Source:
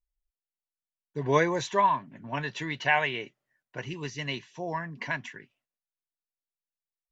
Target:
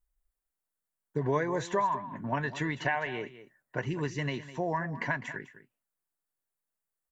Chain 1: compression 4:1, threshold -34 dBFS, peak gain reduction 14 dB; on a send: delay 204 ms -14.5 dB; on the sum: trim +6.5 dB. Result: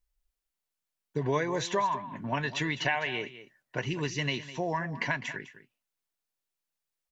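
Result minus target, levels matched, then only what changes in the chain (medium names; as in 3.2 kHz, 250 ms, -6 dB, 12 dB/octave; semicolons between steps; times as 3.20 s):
4 kHz band +8.0 dB
add after compression: high-order bell 3.8 kHz -9 dB 1.7 oct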